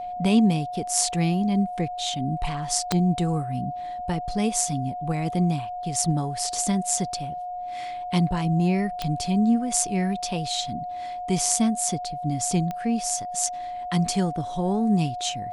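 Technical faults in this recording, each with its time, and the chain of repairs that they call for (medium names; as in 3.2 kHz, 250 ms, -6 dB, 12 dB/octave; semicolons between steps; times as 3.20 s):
whine 720 Hz -30 dBFS
2.92 s: pop -7 dBFS
9.02 s: pop -14 dBFS
12.71 s: pop -18 dBFS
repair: de-click; band-stop 720 Hz, Q 30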